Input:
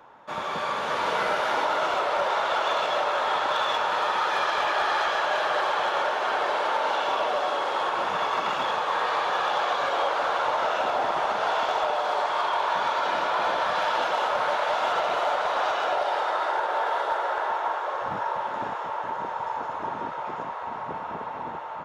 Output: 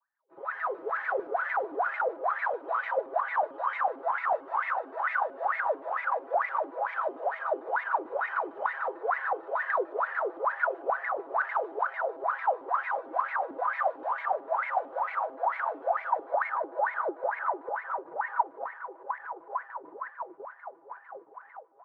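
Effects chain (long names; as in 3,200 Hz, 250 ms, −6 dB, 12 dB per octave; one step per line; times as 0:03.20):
downward expander −24 dBFS
flat-topped bell 880 Hz +8.5 dB 2.9 octaves
comb filter 6.7 ms, depth 81%
brickwall limiter −12 dBFS, peak gain reduction 8.5 dB
LFO wah 2.2 Hz 300–2,000 Hz, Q 17
pitch modulation by a square or saw wave square 6.7 Hz, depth 160 cents
level +4 dB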